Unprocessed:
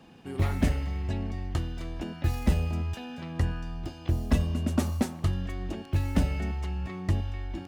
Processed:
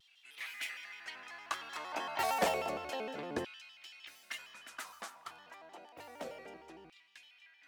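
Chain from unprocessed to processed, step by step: Doppler pass-by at 2.23 s, 10 m/s, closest 5.8 m; LFO high-pass saw down 0.29 Hz 370–3200 Hz; vibrato with a chosen wave square 6.5 Hz, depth 160 cents; trim +4.5 dB

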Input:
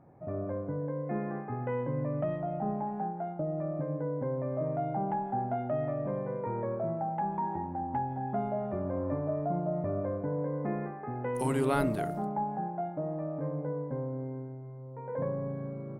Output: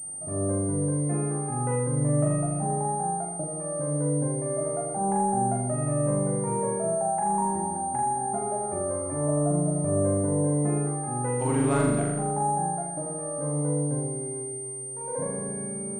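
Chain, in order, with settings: flutter echo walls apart 7 m, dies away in 0.93 s; class-D stage that switches slowly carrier 8.8 kHz

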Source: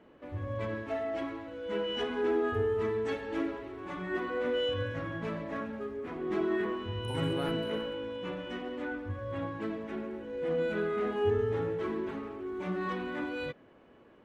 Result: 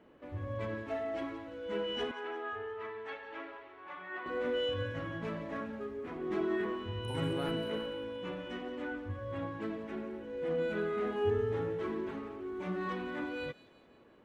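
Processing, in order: 2.11–4.26 s: three-band isolator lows -20 dB, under 580 Hz, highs -23 dB, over 3.7 kHz; feedback echo behind a high-pass 175 ms, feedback 53%, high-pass 3.9 kHz, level -11 dB; trim -2.5 dB

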